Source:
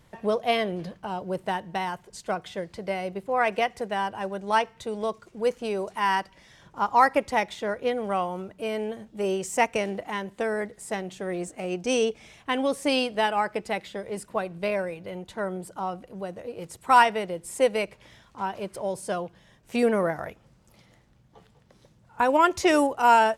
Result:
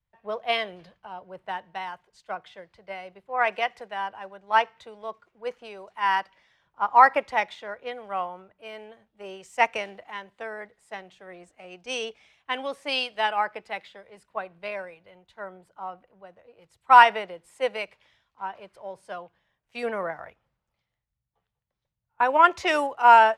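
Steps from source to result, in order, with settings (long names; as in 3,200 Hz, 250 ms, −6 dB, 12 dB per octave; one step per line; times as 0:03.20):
three-way crossover with the lows and the highs turned down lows −13 dB, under 590 Hz, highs −14 dB, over 4,300 Hz
multiband upward and downward expander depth 70%
level −1 dB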